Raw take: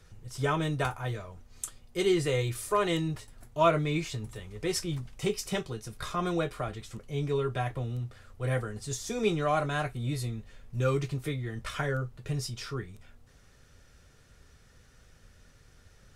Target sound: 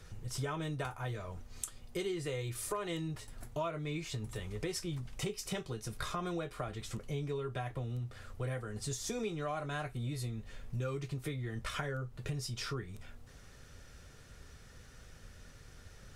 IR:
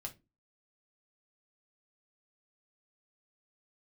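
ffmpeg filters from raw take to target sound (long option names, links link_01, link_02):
-af "acompressor=threshold=-39dB:ratio=6,volume=3.5dB"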